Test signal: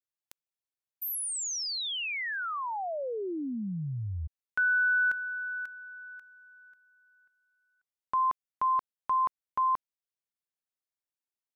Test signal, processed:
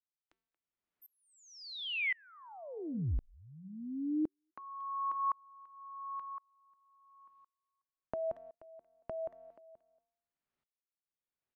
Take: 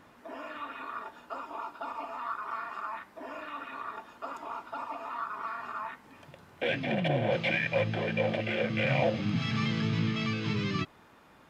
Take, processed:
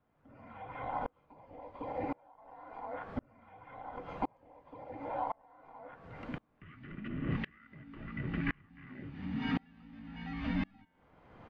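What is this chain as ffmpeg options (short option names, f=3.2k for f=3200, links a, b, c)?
-filter_complex "[0:a]lowpass=2.6k,bandreject=f=216.5:t=h:w=4,bandreject=f=433:t=h:w=4,bandreject=f=649.5:t=h:w=4,bandreject=f=866:t=h:w=4,bandreject=f=1.0825k:t=h:w=4,bandreject=f=1.299k:t=h:w=4,bandreject=f=1.5155k:t=h:w=4,bandreject=f=1.732k:t=h:w=4,bandreject=f=1.9485k:t=h:w=4,bandreject=f=2.165k:t=h:w=4,bandreject=f=2.3815k:t=h:w=4,bandreject=f=2.598k:t=h:w=4,bandreject=f=2.8145k:t=h:w=4,bandreject=f=3.031k:t=h:w=4,bandreject=f=3.2475k:t=h:w=4,bandreject=f=3.464k:t=h:w=4,bandreject=f=3.6805k:t=h:w=4,bandreject=f=3.897k:t=h:w=4,bandreject=f=4.1135k:t=h:w=4,bandreject=f=4.33k:t=h:w=4,bandreject=f=4.5465k:t=h:w=4,bandreject=f=4.763k:t=h:w=4,bandreject=f=4.9795k:t=h:w=4,bandreject=f=5.196k:t=h:w=4,bandreject=f=5.4125k:t=h:w=4,bandreject=f=5.629k:t=h:w=4,bandreject=f=5.8455k:t=h:w=4,bandreject=f=6.062k:t=h:w=4,bandreject=f=6.2785k:t=h:w=4,bandreject=f=6.495k:t=h:w=4,bandreject=f=6.7115k:t=h:w=4,bandreject=f=6.928k:t=h:w=4,bandreject=f=7.1445k:t=h:w=4,bandreject=f=7.361k:t=h:w=4,bandreject=f=7.5775k:t=h:w=4,bandreject=f=7.794k:t=h:w=4,bandreject=f=8.0105k:t=h:w=4,bandreject=f=8.227k:t=h:w=4,bandreject=f=8.4435k:t=h:w=4,acompressor=threshold=-44dB:ratio=3:attack=11:release=333:knee=1:detection=peak,afreqshift=-390,asplit=2[a][b];[b]adelay=230,highpass=300,lowpass=3.4k,asoftclip=type=hard:threshold=-33dB,volume=-24dB[c];[a][c]amix=inputs=2:normalize=0,aeval=exprs='val(0)*pow(10,-34*if(lt(mod(-0.94*n/s,1),2*abs(-0.94)/1000),1-mod(-0.94*n/s,1)/(2*abs(-0.94)/1000),(mod(-0.94*n/s,1)-2*abs(-0.94)/1000)/(1-2*abs(-0.94)/1000))/20)':c=same,volume=13dB"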